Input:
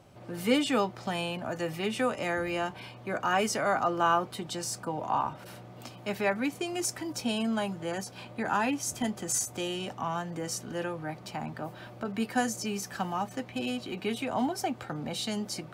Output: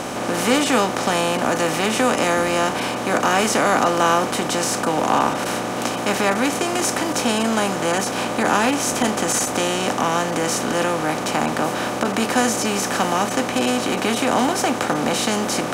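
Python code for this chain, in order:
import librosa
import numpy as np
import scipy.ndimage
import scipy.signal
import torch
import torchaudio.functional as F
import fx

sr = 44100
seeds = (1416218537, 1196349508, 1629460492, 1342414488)

y = fx.bin_compress(x, sr, power=0.4)
y = y * librosa.db_to_amplitude(4.5)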